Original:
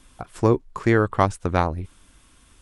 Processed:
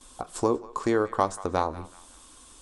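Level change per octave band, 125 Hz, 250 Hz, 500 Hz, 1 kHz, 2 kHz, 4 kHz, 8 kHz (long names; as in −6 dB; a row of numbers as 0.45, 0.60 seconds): −14.5, −6.0, −4.0, −3.5, −9.0, −2.5, +3.5 decibels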